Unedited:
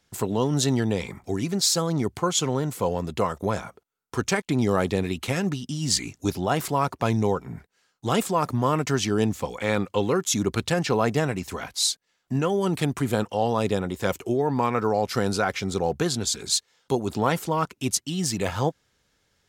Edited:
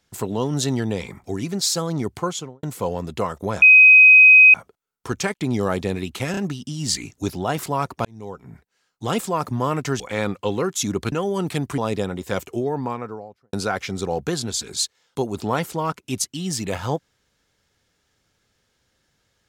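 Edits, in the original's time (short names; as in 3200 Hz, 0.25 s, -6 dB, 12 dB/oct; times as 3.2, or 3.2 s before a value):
2.22–2.63 studio fade out
3.62 add tone 2520 Hz -6 dBFS 0.92 s
5.39 stutter 0.03 s, 3 plays
7.07–8.34 fade in equal-power
9.02–9.51 cut
10.63–12.39 cut
13.05–13.51 cut
14.25–15.26 studio fade out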